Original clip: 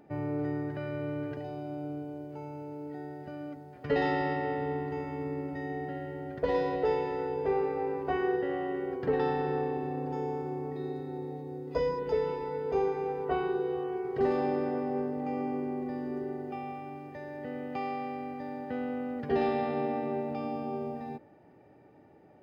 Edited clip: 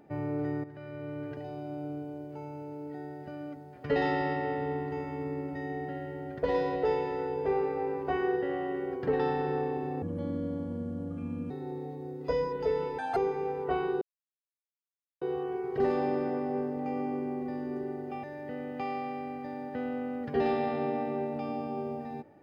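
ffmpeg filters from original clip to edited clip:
-filter_complex "[0:a]asplit=8[a][b][c][d][e][f][g][h];[a]atrim=end=0.64,asetpts=PTS-STARTPTS,afade=t=out:st=0.636:d=0.004:c=hsin:silence=0.237137[i];[b]atrim=start=0.64:end=10.024,asetpts=PTS-STARTPTS,afade=t=in:d=1.33:c=qsin:silence=0.237137[j];[c]atrim=start=10.02:end=10.97,asetpts=PTS-STARTPTS,asetrate=28224,aresample=44100[k];[d]atrim=start=10.966:end=12.454[l];[e]atrim=start=12.45:end=12.77,asetpts=PTS-STARTPTS,asetrate=78498,aresample=44100,atrim=end_sample=7928,asetpts=PTS-STARTPTS[m];[f]atrim=start=12.766:end=13.62,asetpts=PTS-STARTPTS,afade=t=out:st=0.85:d=0.004:c=hsin,apad=pad_dur=1.2[n];[g]atrim=start=13.62:end=16.642,asetpts=PTS-STARTPTS,afade=t=in:d=0.004:c=hsin[o];[h]atrim=start=17.188[p];[i][j]concat=n=2:v=0:a=1[q];[q][k]acrossfade=d=0.004:c1=hsin:c2=hsin[r];[r][l]acrossfade=d=0.004:c1=hsin:c2=hsin[s];[s][m]acrossfade=d=0.004:c1=hsin:c2=hsin[t];[n][o]concat=n=2:v=0:a=1[u];[t][u]acrossfade=d=0.004:c1=hsin:c2=hsin[v];[v][p]acrossfade=d=0.004:c1=hsin:c2=hsin"

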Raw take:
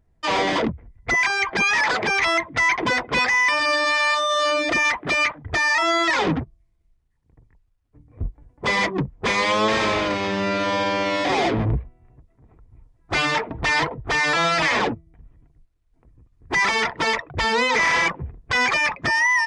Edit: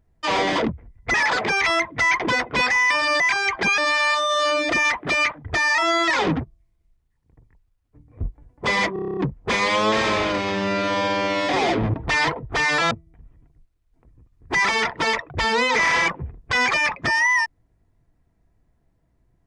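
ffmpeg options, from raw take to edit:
-filter_complex "[0:a]asplit=14[a][b][c][d][e][f][g][h][i][j][k][l][m][n];[a]atrim=end=1.142[o];[b]atrim=start=1.718:end=3.782[p];[c]atrim=start=1.138:end=1.722[q];[d]atrim=start=3.778:end=8.962[r];[e]atrim=start=8.928:end=8.962[s];[f]atrim=start=8.928:end=8.962[t];[g]atrim=start=8.928:end=8.962[u];[h]atrim=start=8.928:end=8.962[v];[i]atrim=start=8.928:end=8.962[w];[j]atrim=start=8.928:end=8.962[x];[k]atrim=start=8.928:end=8.962[y];[l]atrim=start=8.928:end=11.702[z];[m]atrim=start=13.488:end=14.462[aa];[n]atrim=start=14.908[ab];[o][p]acrossfade=d=0.004:c1=hsin:c2=hsin[ac];[ac][q]acrossfade=d=0.004:c1=hsin:c2=hsin[ad];[ad][r]acrossfade=d=0.004:c1=hsin:c2=hsin[ae];[ae][s]acrossfade=d=0.004:c1=hsin:c2=hsin[af];[af][t]acrossfade=d=0.004:c1=hsin:c2=hsin[ag];[ag][u]acrossfade=d=0.004:c1=hsin:c2=hsin[ah];[ah][v]acrossfade=d=0.004:c1=hsin:c2=hsin[ai];[ai][w]acrossfade=d=0.004:c1=hsin:c2=hsin[aj];[aj][x]acrossfade=d=0.004:c1=hsin:c2=hsin[ak];[ak][y]acrossfade=d=0.004:c1=hsin:c2=hsin[al];[al][z]acrossfade=d=0.004:c1=hsin:c2=hsin[am];[am][aa]acrossfade=d=0.004:c1=hsin:c2=hsin[an];[an][ab]acrossfade=d=0.004:c1=hsin:c2=hsin"

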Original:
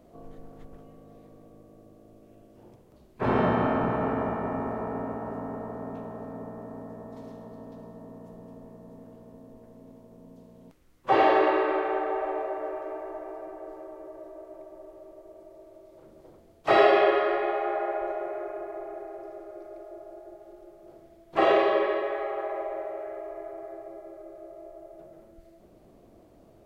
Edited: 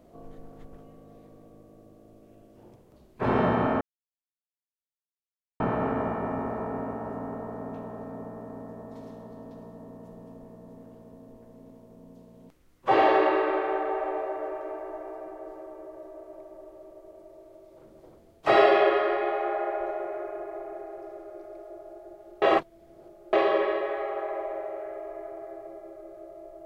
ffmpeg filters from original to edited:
-filter_complex "[0:a]asplit=4[a][b][c][d];[a]atrim=end=3.81,asetpts=PTS-STARTPTS,afade=t=out:st=3.806:d=0.004:c=hsin,apad=pad_dur=1.79[e];[b]atrim=start=3.81:end=20.632,asetpts=PTS-STARTPTS,afade=t=in:d=0.004:c=hsin[f];[c]atrim=start=20.628:end=21.542,asetpts=PTS-STARTPTS,areverse[g];[d]atrim=start=21.538[h];[e][f]concat=n=2:v=0:a=1[i];[i][g]acrossfade=d=0.004:c1=hsin:c2=hsin[j];[j][h]acrossfade=d=0.004:c1=hsin:c2=hsin"

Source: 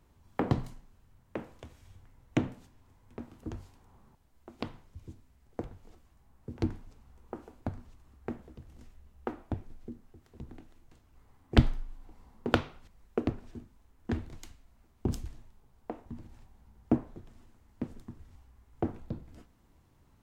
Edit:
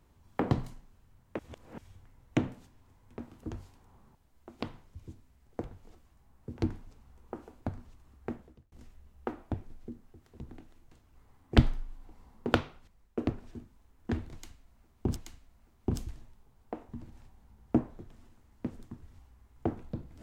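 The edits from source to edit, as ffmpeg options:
-filter_complex "[0:a]asplit=6[a][b][c][d][e][f];[a]atrim=end=1.392[g];[b]atrim=start=1.388:end=1.782,asetpts=PTS-STARTPTS,areverse[h];[c]atrim=start=1.778:end=8.72,asetpts=PTS-STARTPTS,afade=t=out:st=6.542:d=0.4[i];[d]atrim=start=8.72:end=13.18,asetpts=PTS-STARTPTS,afade=t=in:d=0.004:c=hsin,afade=t=out:st=3.81:d=0.65:silence=0.375837[j];[e]atrim=start=13.18:end=15.162,asetpts=PTS-STARTPTS,afade=t=in:d=0.004:c=hsin:silence=0.375837[k];[f]atrim=start=14.328[l];[g][h]acrossfade=d=0.004:c1=hsin:c2=hsin[m];[i][j][k]concat=n=3:v=0:a=1[n];[m][n]acrossfade=d=0.004:c1=hsin:c2=hsin[o];[o][l]acrossfade=d=0.004:c1=hsin:c2=hsin"

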